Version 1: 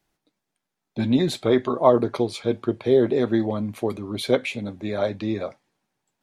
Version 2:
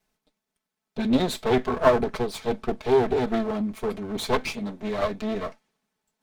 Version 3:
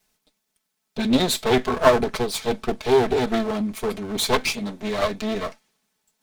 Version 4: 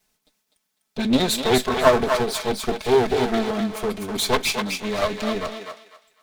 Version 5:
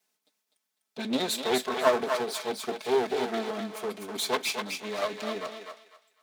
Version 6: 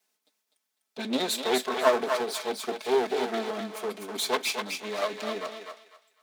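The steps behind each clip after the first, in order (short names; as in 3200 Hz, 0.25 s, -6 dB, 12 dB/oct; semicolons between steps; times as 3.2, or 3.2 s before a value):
minimum comb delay 4.6 ms
high shelf 2600 Hz +9.5 dB; gain +2 dB
thinning echo 0.25 s, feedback 27%, high-pass 680 Hz, level -4 dB
HPF 260 Hz 12 dB/oct; gain -7 dB
HPF 190 Hz 12 dB/oct; gain +1 dB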